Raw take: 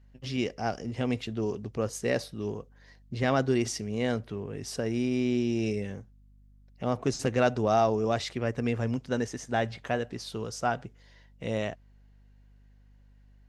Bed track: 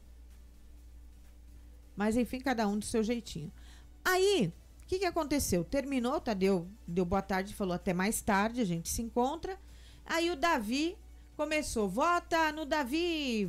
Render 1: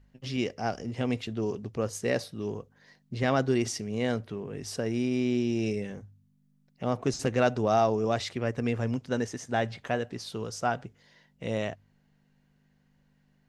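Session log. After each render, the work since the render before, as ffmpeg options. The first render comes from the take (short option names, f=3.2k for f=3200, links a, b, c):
-af "bandreject=f=50:t=h:w=4,bandreject=f=100:t=h:w=4"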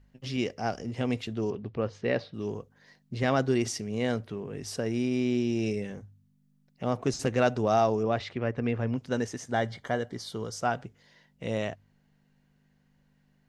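-filter_complex "[0:a]asettb=1/sr,asplit=3[a][b][c];[a]atrim=end=1.504[d];[b]atrim=start=1.5:end=2.34,asetpts=PTS-STARTPTS,afade=t=in:d=0.004:c=qsin,afade=t=out:st=0.836:d=0.004:c=qsin,lowpass=f=3.9k:w=0.5412,lowpass=f=3.9k:w=1.3066[e];[c]atrim=start=2.336[f];[d][e]acrossfade=d=0.004:c1=hsin:c2=qsin[g];[g][f]acrossfade=d=0.004:c1=qsin:c2=hsin,asettb=1/sr,asplit=3[h][i][j];[h]atrim=end=8.034[k];[i]atrim=start=8.03:end=8.98,asetpts=PTS-STARTPTS,afade=t=in:d=0.004:c=qsin,afade=t=out:st=0.946:d=0.004:c=qsin,lowpass=3.2k[l];[j]atrim=start=8.976[m];[k][l]acrossfade=d=0.004:c1=hsin:c2=qsin[n];[n][m]acrossfade=d=0.004:c1=qsin:c2=hsin,asettb=1/sr,asplit=3[o][p][q];[o]atrim=end=9.514[r];[p]atrim=start=9.51:end=10.58,asetpts=PTS-STARTPTS,afade=t=in:d=0.004:c=qsin,afade=t=out:st=1.066:d=0.004:c=qsin,asuperstop=centerf=2600:order=8:qfactor=5.6[s];[q]atrim=start=10.576[t];[r][s]acrossfade=d=0.004:c1=hsin:c2=qsin[u];[u][t]acrossfade=d=0.004:c1=qsin:c2=hsin"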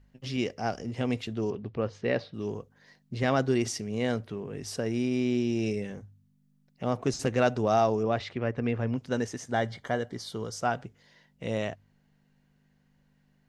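-af anull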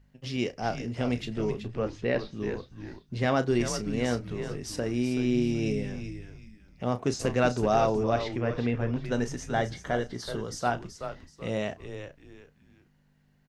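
-filter_complex "[0:a]asplit=2[a][b];[b]adelay=33,volume=-12dB[c];[a][c]amix=inputs=2:normalize=0,asplit=2[d][e];[e]asplit=3[f][g][h];[f]adelay=378,afreqshift=-100,volume=-9dB[i];[g]adelay=756,afreqshift=-200,volume=-19.5dB[j];[h]adelay=1134,afreqshift=-300,volume=-29.9dB[k];[i][j][k]amix=inputs=3:normalize=0[l];[d][l]amix=inputs=2:normalize=0"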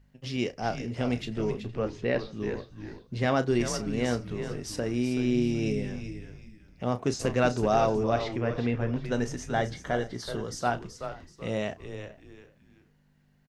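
-filter_complex "[0:a]asplit=2[a][b];[b]adelay=460.6,volume=-21dB,highshelf=f=4k:g=-10.4[c];[a][c]amix=inputs=2:normalize=0"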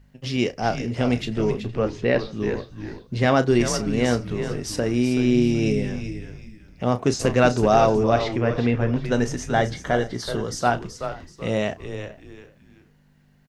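-af "volume=7dB"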